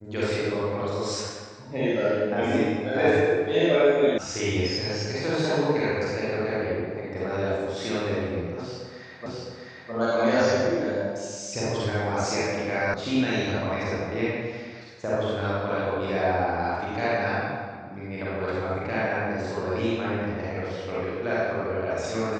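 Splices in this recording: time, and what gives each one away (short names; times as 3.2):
4.18 sound cut off
9.26 repeat of the last 0.66 s
12.94 sound cut off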